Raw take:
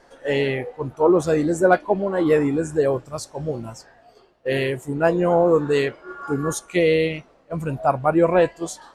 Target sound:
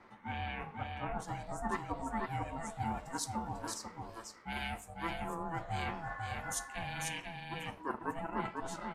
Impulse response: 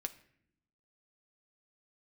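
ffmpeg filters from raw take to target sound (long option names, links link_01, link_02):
-filter_complex "[0:a]areverse,acompressor=threshold=-31dB:ratio=6,areverse,acrossover=split=450 3000:gain=0.158 1 0.126[link_01][link_02][link_03];[link_01][link_02][link_03]amix=inputs=3:normalize=0,acrossover=split=5100[link_04][link_05];[link_05]dynaudnorm=framelen=290:gausssize=7:maxgain=16dB[link_06];[link_04][link_06]amix=inputs=2:normalize=0,highshelf=frequency=6700:gain=4.5,aecho=1:1:495:0.631[link_07];[1:a]atrim=start_sample=2205,afade=type=out:start_time=0.18:duration=0.01,atrim=end_sample=8379[link_08];[link_07][link_08]afir=irnorm=-1:irlink=0,aeval=exprs='val(0)*sin(2*PI*330*n/s)':channel_layout=same,volume=2dB"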